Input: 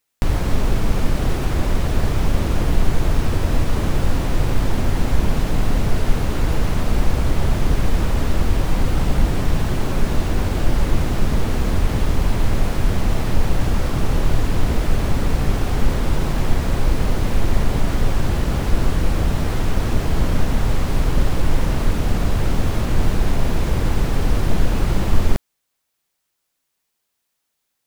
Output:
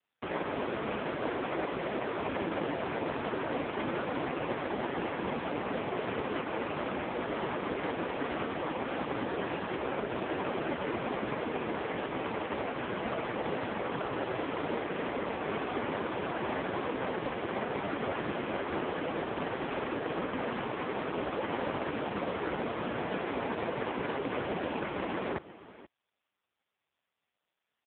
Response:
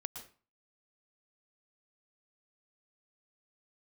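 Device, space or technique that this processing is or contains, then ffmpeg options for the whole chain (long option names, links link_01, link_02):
satellite phone: -filter_complex "[0:a]asplit=3[link_01][link_02][link_03];[link_01]afade=type=out:start_time=9.17:duration=0.02[link_04];[link_02]highpass=frequency=150:width=0.5412,highpass=frequency=150:width=1.3066,afade=type=in:start_time=9.17:duration=0.02,afade=type=out:start_time=9.69:duration=0.02[link_05];[link_03]afade=type=in:start_time=9.69:duration=0.02[link_06];[link_04][link_05][link_06]amix=inputs=3:normalize=0,highpass=340,lowpass=3000,aecho=1:1:487:0.133" -ar 8000 -c:a libopencore_amrnb -b:a 4750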